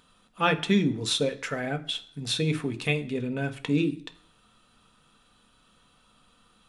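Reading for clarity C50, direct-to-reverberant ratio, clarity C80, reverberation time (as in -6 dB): 16.0 dB, 6.5 dB, 20.0 dB, not exponential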